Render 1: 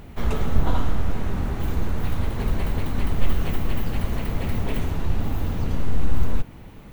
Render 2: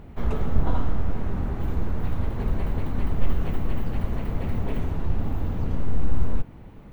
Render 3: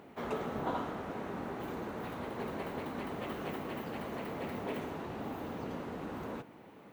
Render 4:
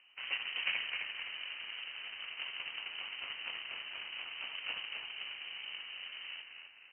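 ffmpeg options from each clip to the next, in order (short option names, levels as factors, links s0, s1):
-af "highshelf=f=2400:g=-12,volume=0.841"
-af "highpass=310,volume=0.841"
-filter_complex "[0:a]aeval=exprs='0.075*(cos(1*acos(clip(val(0)/0.075,-1,1)))-cos(1*PI/2))+0.0119*(cos(3*acos(clip(val(0)/0.075,-1,1)))-cos(3*PI/2))+0.00335*(cos(7*acos(clip(val(0)/0.075,-1,1)))-cos(7*PI/2))':c=same,lowpass=f=2700:t=q:w=0.5098,lowpass=f=2700:t=q:w=0.6013,lowpass=f=2700:t=q:w=0.9,lowpass=f=2700:t=q:w=2.563,afreqshift=-3200,asplit=6[s0][s1][s2][s3][s4][s5];[s1]adelay=260,afreqshift=-62,volume=0.531[s6];[s2]adelay=520,afreqshift=-124,volume=0.234[s7];[s3]adelay=780,afreqshift=-186,volume=0.102[s8];[s4]adelay=1040,afreqshift=-248,volume=0.0452[s9];[s5]adelay=1300,afreqshift=-310,volume=0.02[s10];[s0][s6][s7][s8][s9][s10]amix=inputs=6:normalize=0,volume=1.41"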